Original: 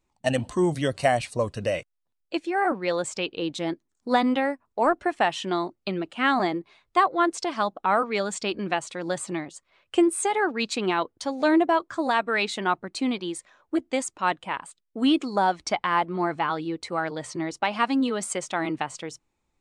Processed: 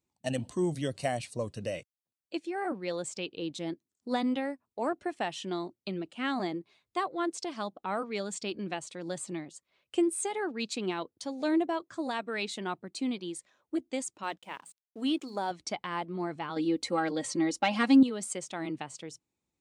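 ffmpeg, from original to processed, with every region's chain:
-filter_complex "[0:a]asettb=1/sr,asplit=3[a][b][c];[a]atrim=end=14.234[d];[b]atrim=start=14.23:end=15.51,asetpts=PTS-STARTPTS,afade=t=in:d=0.004:c=qsin,afade=t=out:st=1.276:d=0.004:c=qsin,bass=f=250:g=-7,treble=f=4k:g=0,bandreject=f=60:t=h:w=6,bandreject=f=120:t=h:w=6,bandreject=f=180:t=h:w=6,bandreject=f=240:t=h:w=6,aeval=exprs='sgn(val(0))*max(abs(val(0))-0.00158,0)':c=same[e];[c]atrim=start=15.506[f];[d][e]acrossfade=d=0.004:c1=hsin:c2=qsin[g];[g][f]acrossfade=d=0.004:c1=qsin:c2=hsin,asettb=1/sr,asplit=3[h][i][j];[h]atrim=end=16.564[k];[i]atrim=start=16.56:end=18.03,asetpts=PTS-STARTPTS,afade=t=in:d=0.004:c=qsin,afade=t=out:st=1.466:d=0.004:c=qsin,aecho=1:1:3.7:0.74,atrim=end_sample=64827,acontrast=60[l];[j]atrim=start=18.026[m];[k][l]acrossfade=d=0.004:c1=hsin:c2=qsin[n];[n][m]acrossfade=d=0.004:c1=qsin:c2=hsin,highpass=100,equalizer=f=1.2k:w=0.54:g=-8.5,volume=-4.5dB"

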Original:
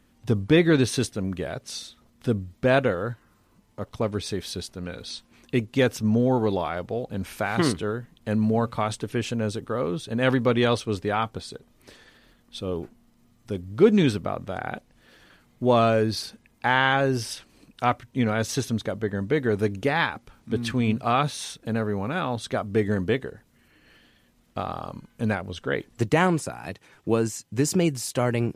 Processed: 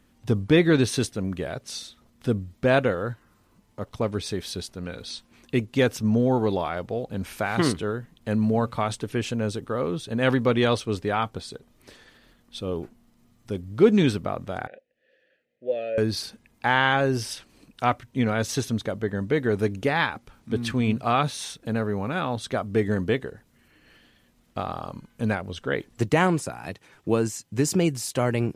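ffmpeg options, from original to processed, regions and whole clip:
-filter_complex "[0:a]asettb=1/sr,asplit=3[a][b][c];[a]atrim=end=14.674[d];[b]atrim=start=14.67:end=15.98,asetpts=PTS-STARTPTS,afade=t=in:d=0.004:c=qsin,afade=t=out:st=1.306:d=0.004:c=qsin,asplit=3[e][f][g];[e]bandpass=f=530:t=q:w=8,volume=0dB[h];[f]bandpass=f=1.84k:t=q:w=8,volume=-6dB[i];[g]bandpass=f=2.48k:t=q:w=8,volume=-9dB[j];[h][i][j]amix=inputs=3:normalize=0,equalizer=f=1k:t=o:w=0.34:g=-14.5[k];[c]atrim=start=15.976[l];[d][k]acrossfade=d=0.004:c1=hsin:c2=qsin[m];[m][l]acrossfade=d=0.004:c1=qsin:c2=hsin"

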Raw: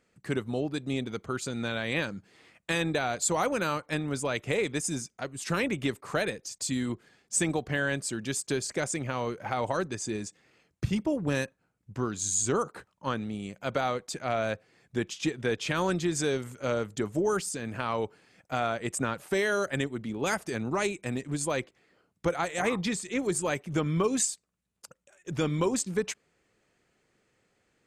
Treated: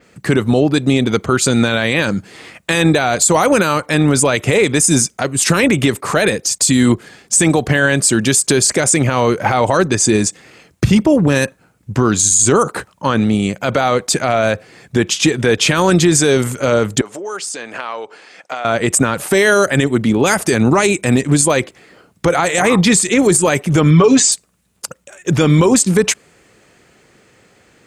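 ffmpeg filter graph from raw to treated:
-filter_complex "[0:a]asettb=1/sr,asplit=3[a][b][c];[a]atrim=end=17.014[d];[b]atrim=start=17.01:end=18.65,asetpts=PTS-STARTPTS,afade=t=in:d=0.004:c=qsin,afade=t=out:st=1.636:d=0.004:c=qsin,acompressor=threshold=-39dB:ratio=10:attack=3.2:release=140:knee=1:detection=peak,highpass=480,lowpass=7.4k[e];[c]atrim=start=18.646[f];[d][e]acrossfade=d=0.004:c1=hsin:c2=qsin[g];[g][f]acrossfade=d=0.004:c1=qsin:c2=hsin,asettb=1/sr,asplit=3[h][i][j];[h]atrim=end=23.904[k];[i]atrim=start=23.9:end=24.32,asetpts=PTS-STARTPTS,afade=t=in:d=0.004:c=qsin,afade=t=out:st=0.416:d=0.004:c=qsin,lowpass=f=6.5k:w=0.5412,lowpass=f=6.5k:w=1.3066,aecho=1:1:7:0.88,atrim=end_sample=18522[l];[j]atrim=start=24.316[m];[k][l]acrossfade=d=0.004:c1=hsin:c2=qsin[n];[n][m]acrossfade=d=0.004:c1=qsin:c2=hsin,highpass=44,adynamicequalizer=threshold=0.00398:dfrequency=9800:dqfactor=1.1:tfrequency=9800:tqfactor=1.1:attack=5:release=100:ratio=0.375:range=3:mode=boostabove:tftype=bell,alimiter=level_in=23dB:limit=-1dB:release=50:level=0:latency=1,volume=-2dB"

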